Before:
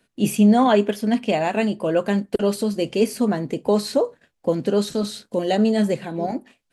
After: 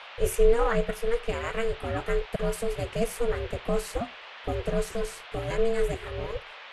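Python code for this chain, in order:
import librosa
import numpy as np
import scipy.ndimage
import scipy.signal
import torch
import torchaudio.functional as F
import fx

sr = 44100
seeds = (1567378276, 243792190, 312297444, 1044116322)

y = fx.fixed_phaser(x, sr, hz=1500.0, stages=4)
y = y * np.sin(2.0 * np.pi * 230.0 * np.arange(len(y)) / sr)
y = fx.dmg_noise_band(y, sr, seeds[0], low_hz=500.0, high_hz=3300.0, level_db=-45.0)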